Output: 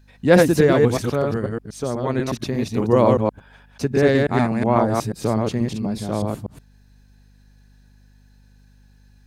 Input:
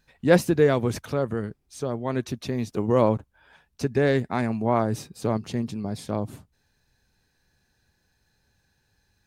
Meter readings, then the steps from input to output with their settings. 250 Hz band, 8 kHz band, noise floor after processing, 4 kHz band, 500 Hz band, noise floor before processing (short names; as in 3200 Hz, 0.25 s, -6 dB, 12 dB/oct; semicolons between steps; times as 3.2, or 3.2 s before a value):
+5.5 dB, +5.5 dB, -52 dBFS, +5.5 dB, +5.5 dB, -71 dBFS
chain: reverse delay 0.122 s, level -2 dB; hum 50 Hz, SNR 31 dB; gain +3.5 dB